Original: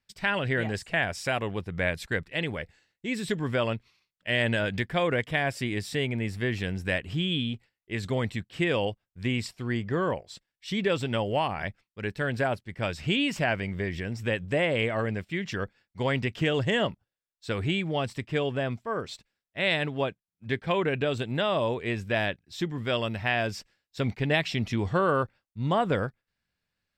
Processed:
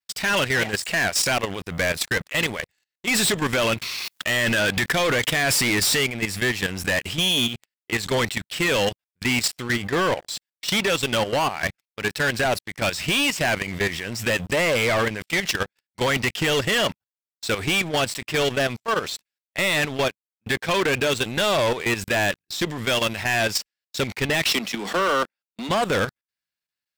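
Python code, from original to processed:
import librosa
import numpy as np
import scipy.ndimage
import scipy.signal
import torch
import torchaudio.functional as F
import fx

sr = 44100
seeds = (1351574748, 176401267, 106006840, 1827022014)

y = fx.env_flatten(x, sr, amount_pct=50, at=(3.09, 6.04))
y = fx.steep_highpass(y, sr, hz=180.0, slope=96, at=(24.44, 25.69))
y = fx.tilt_eq(y, sr, slope=3.0)
y = fx.level_steps(y, sr, step_db=16)
y = fx.leveller(y, sr, passes=5)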